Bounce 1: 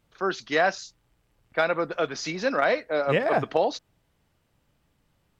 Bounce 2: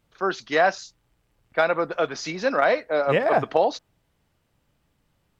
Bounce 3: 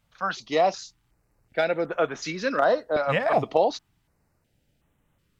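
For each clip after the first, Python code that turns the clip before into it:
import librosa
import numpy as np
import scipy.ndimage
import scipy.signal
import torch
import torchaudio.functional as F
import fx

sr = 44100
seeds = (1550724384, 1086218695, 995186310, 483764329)

y1 = fx.dynamic_eq(x, sr, hz=820.0, q=0.77, threshold_db=-36.0, ratio=4.0, max_db=4)
y2 = fx.filter_held_notch(y1, sr, hz=2.7, low_hz=370.0, high_hz=4700.0)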